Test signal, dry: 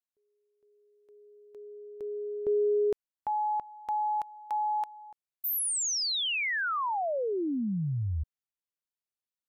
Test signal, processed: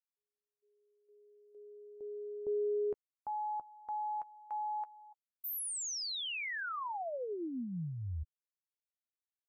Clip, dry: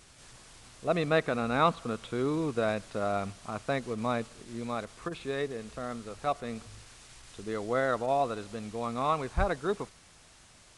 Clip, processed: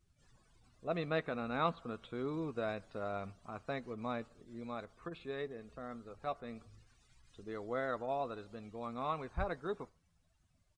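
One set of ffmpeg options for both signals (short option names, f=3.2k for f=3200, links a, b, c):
-filter_complex "[0:a]afftdn=nr=19:nf=-52,asplit=2[a][b];[b]adelay=12,volume=-13.5dB[c];[a][c]amix=inputs=2:normalize=0,volume=-9dB"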